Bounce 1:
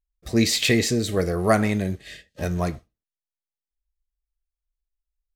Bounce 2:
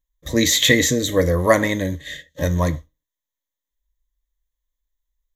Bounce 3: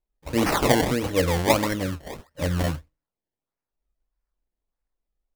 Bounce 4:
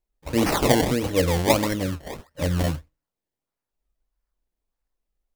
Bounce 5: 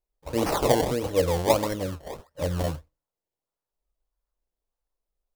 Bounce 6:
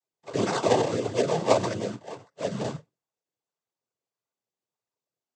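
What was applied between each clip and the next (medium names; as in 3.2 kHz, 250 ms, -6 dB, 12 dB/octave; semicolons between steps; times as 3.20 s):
rippled EQ curve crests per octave 1.1, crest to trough 14 dB; trim +3.5 dB
decimation with a swept rate 24×, swing 100% 1.6 Hz; trim -4.5 dB
dynamic bell 1.4 kHz, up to -4 dB, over -36 dBFS, Q 0.97; trim +1.5 dB
graphic EQ 250/500/1000/2000 Hz -4/+5/+3/-4 dB; trim -4.5 dB
noise-vocoded speech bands 16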